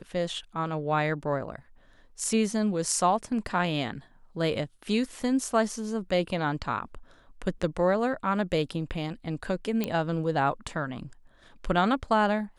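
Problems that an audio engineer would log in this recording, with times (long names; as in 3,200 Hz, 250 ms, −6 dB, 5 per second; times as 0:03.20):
0:09.84: click −14 dBFS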